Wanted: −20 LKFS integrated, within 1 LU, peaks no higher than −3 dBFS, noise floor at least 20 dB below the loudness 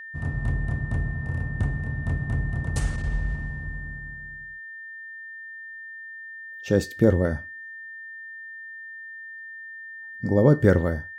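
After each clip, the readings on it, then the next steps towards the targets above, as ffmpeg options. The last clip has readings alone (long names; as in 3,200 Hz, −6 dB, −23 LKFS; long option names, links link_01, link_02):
interfering tone 1,800 Hz; level of the tone −37 dBFS; integrated loudness −25.5 LKFS; sample peak −5.0 dBFS; target loudness −20.0 LKFS
→ -af "bandreject=frequency=1800:width=30"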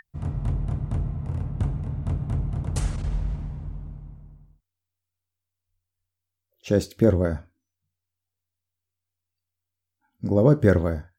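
interfering tone none found; integrated loudness −25.5 LKFS; sample peak −5.0 dBFS; target loudness −20.0 LKFS
→ -af "volume=5.5dB,alimiter=limit=-3dB:level=0:latency=1"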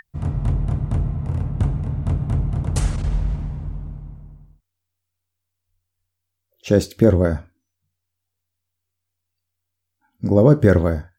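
integrated loudness −20.5 LKFS; sample peak −3.0 dBFS; background noise floor −80 dBFS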